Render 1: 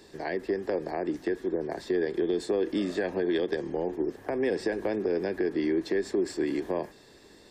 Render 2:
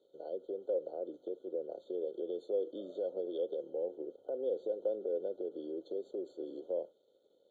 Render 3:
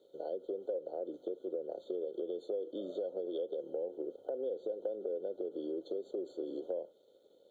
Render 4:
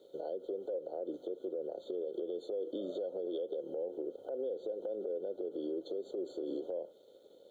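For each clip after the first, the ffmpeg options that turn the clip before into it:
ffmpeg -i in.wav -filter_complex "[0:a]aeval=exprs='sgn(val(0))*max(abs(val(0))-0.00119,0)':channel_layout=same,asplit=3[link_01][link_02][link_03];[link_01]bandpass=frequency=530:width_type=q:width=8,volume=0dB[link_04];[link_02]bandpass=frequency=1840:width_type=q:width=8,volume=-6dB[link_05];[link_03]bandpass=frequency=2480:width_type=q:width=8,volume=-9dB[link_06];[link_04][link_05][link_06]amix=inputs=3:normalize=0,afftfilt=real='re*eq(mod(floor(b*sr/1024/1500),2),0)':imag='im*eq(mod(floor(b*sr/1024/1500),2),0)':win_size=1024:overlap=0.75,volume=1dB" out.wav
ffmpeg -i in.wav -af "acompressor=threshold=-40dB:ratio=5,volume=5.5dB" out.wav
ffmpeg -i in.wav -af "alimiter=level_in=11dB:limit=-24dB:level=0:latency=1:release=141,volume=-11dB,volume=5.5dB" out.wav

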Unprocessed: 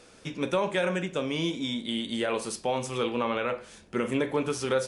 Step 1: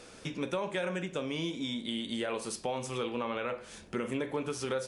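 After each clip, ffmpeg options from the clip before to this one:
ffmpeg -i in.wav -af "acompressor=threshold=-40dB:ratio=2,volume=2.5dB" out.wav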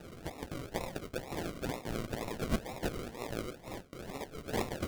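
ffmpeg -i in.wav -af "aderivative,acrusher=samples=40:mix=1:aa=0.000001:lfo=1:lforange=24:lforate=2.1,volume=10.5dB" out.wav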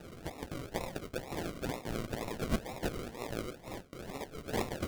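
ffmpeg -i in.wav -af anull out.wav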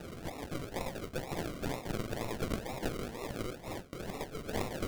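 ffmpeg -i in.wav -filter_complex "[0:a]asplit=2[link_01][link_02];[link_02]alimiter=level_in=5.5dB:limit=-24dB:level=0:latency=1:release=27,volume=-5.5dB,volume=1dB[link_03];[link_01][link_03]amix=inputs=2:normalize=0,aeval=exprs='clip(val(0),-1,0.0112)':channel_layout=same,volume=-2dB" out.wav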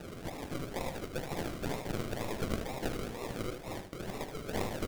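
ffmpeg -i in.wav -af "aecho=1:1:76|152|228:0.398|0.107|0.029" out.wav

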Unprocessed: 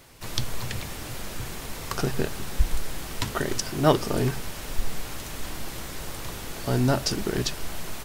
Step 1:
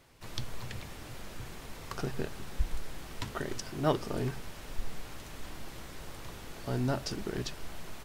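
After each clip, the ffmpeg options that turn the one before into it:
ffmpeg -i in.wav -af "highshelf=frequency=5800:gain=-7,volume=-8.5dB" out.wav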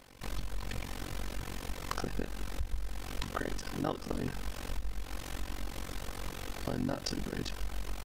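ffmpeg -i in.wav -af "aecho=1:1:3.9:0.36,acompressor=threshold=-37dB:ratio=3,tremolo=f=46:d=0.974,volume=8dB" out.wav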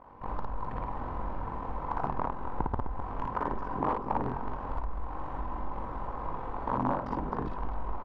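ffmpeg -i in.wav -af "aeval=exprs='(mod(15.8*val(0)+1,2)-1)/15.8':channel_layout=same,lowpass=frequency=980:width_type=q:width=4.9,aecho=1:1:55.39|256.6:0.794|0.355" out.wav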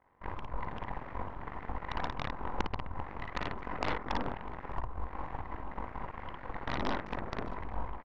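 ffmpeg -i in.wav -af "aeval=exprs='0.2*(cos(1*acos(clip(val(0)/0.2,-1,1)))-cos(1*PI/2))+0.0562*(cos(3*acos(clip(val(0)/0.2,-1,1)))-cos(3*PI/2))+0.0251*(cos(8*acos(clip(val(0)/0.2,-1,1)))-cos(8*PI/2))':channel_layout=same" out.wav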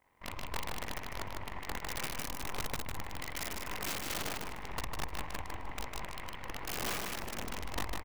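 ffmpeg -i in.wav -af "aexciter=amount=4.2:drive=3.8:freq=2100,aeval=exprs='(mod(20*val(0)+1,2)-1)/20':channel_layout=same,aecho=1:1:152|304|456:0.631|0.145|0.0334,volume=-3.5dB" out.wav

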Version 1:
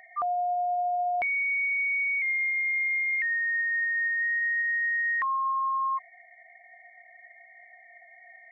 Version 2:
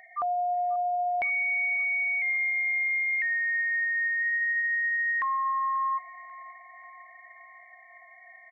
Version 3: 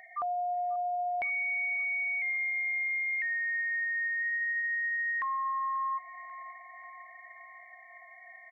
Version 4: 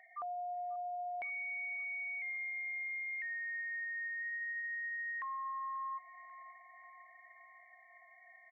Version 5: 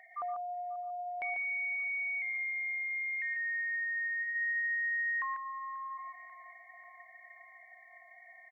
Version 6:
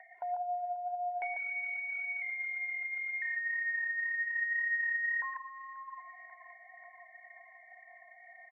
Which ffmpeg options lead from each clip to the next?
ffmpeg -i in.wav -af "bandreject=frequency=1300:width=12,aecho=1:1:539|1078|1617|2156|2695:0.106|0.0593|0.0332|0.0186|0.0104" out.wav
ffmpeg -i in.wav -af "acompressor=threshold=-38dB:ratio=1.5" out.wav
ffmpeg -i in.wav -af "bass=frequency=250:gain=-7,treble=frequency=4000:gain=-6,volume=-8.5dB" out.wav
ffmpeg -i in.wav -af "aecho=1:1:120|144:0.237|0.473,volume=4dB" out.wav
ffmpeg -i in.wav -filter_complex "[0:a]aphaser=in_gain=1:out_gain=1:delay=3.5:decay=0.31:speed=1.9:type=sinusoidal,asuperstop=centerf=1200:order=12:qfactor=3.7,acrossover=split=540 2000:gain=0.2 1 0.0708[link_01][link_02][link_03];[link_01][link_02][link_03]amix=inputs=3:normalize=0,volume=4.5dB" out.wav

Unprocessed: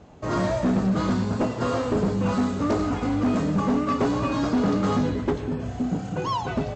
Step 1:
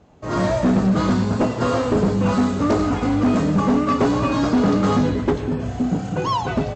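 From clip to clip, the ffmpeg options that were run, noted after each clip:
ffmpeg -i in.wav -af "dynaudnorm=framelen=210:gausssize=3:maxgain=9dB,volume=-4dB" out.wav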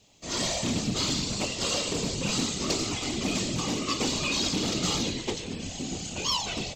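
ffmpeg -i in.wav -af "aexciter=amount=6.1:drive=9:freq=2300,afftfilt=real='hypot(re,im)*cos(2*PI*random(0))':imag='hypot(re,im)*sin(2*PI*random(1))':win_size=512:overlap=0.75,volume=-7dB" out.wav

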